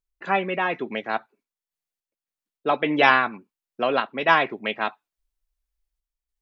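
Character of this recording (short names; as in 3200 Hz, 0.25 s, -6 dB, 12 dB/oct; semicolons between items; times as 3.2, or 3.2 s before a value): random-step tremolo, depth 55%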